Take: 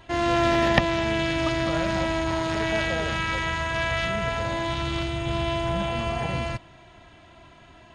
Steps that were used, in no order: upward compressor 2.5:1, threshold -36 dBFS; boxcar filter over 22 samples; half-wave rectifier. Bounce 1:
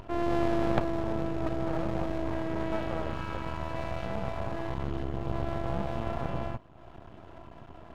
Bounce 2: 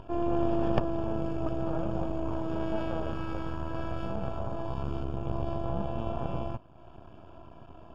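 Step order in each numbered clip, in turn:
boxcar filter > half-wave rectifier > upward compressor; half-wave rectifier > upward compressor > boxcar filter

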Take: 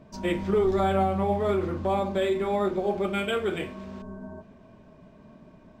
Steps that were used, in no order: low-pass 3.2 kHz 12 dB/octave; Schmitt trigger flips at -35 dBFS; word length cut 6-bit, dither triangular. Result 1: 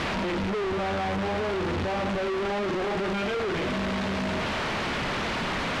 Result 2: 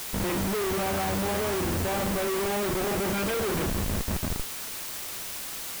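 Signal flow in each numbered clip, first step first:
word length cut > Schmitt trigger > low-pass; Schmitt trigger > low-pass > word length cut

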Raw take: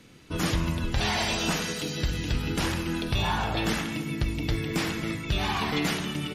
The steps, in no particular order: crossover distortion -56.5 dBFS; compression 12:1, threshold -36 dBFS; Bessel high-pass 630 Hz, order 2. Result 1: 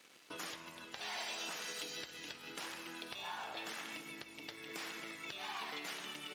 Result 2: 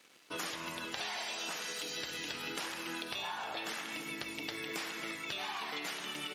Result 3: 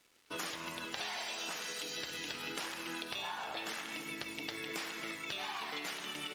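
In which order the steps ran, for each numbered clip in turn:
compression > crossover distortion > Bessel high-pass; crossover distortion > Bessel high-pass > compression; Bessel high-pass > compression > crossover distortion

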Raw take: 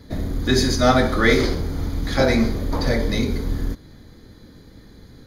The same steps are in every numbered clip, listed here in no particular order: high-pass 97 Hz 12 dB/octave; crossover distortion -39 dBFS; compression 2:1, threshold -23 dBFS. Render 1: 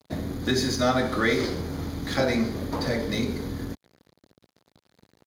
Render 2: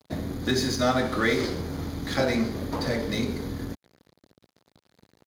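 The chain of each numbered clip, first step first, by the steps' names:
crossover distortion > compression > high-pass; compression > crossover distortion > high-pass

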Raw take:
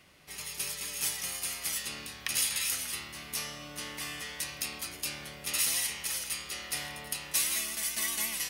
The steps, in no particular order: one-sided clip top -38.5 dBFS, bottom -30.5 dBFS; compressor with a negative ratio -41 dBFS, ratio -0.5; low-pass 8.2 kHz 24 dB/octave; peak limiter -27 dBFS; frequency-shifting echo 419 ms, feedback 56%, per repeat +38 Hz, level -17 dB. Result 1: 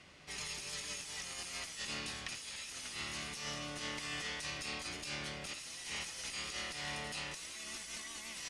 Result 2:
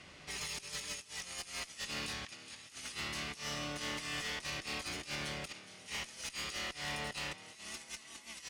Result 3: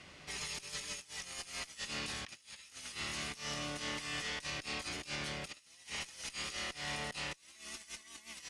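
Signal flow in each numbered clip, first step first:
frequency-shifting echo > peak limiter > one-sided clip > compressor with a negative ratio > low-pass; compressor with a negative ratio > frequency-shifting echo > peak limiter > low-pass > one-sided clip; frequency-shifting echo > compressor with a negative ratio > peak limiter > one-sided clip > low-pass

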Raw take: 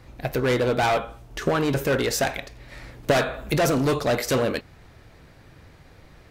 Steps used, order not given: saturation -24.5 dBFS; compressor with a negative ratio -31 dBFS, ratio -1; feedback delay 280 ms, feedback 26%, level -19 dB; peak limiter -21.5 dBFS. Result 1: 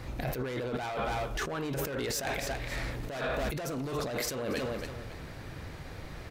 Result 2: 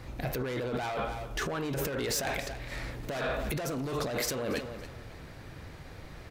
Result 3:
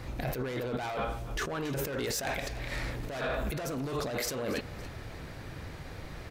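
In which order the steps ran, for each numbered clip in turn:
feedback delay > compressor with a negative ratio > peak limiter > saturation; peak limiter > feedback delay > compressor with a negative ratio > saturation; compressor with a negative ratio > feedback delay > peak limiter > saturation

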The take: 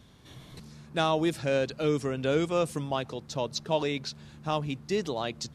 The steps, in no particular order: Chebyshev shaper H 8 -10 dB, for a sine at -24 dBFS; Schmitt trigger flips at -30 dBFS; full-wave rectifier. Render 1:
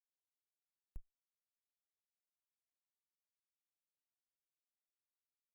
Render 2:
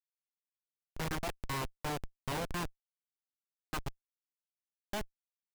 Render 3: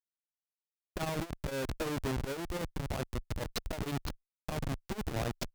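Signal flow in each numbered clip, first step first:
full-wave rectifier > Schmitt trigger > Chebyshev shaper; full-wave rectifier > Chebyshev shaper > Schmitt trigger; Schmitt trigger > full-wave rectifier > Chebyshev shaper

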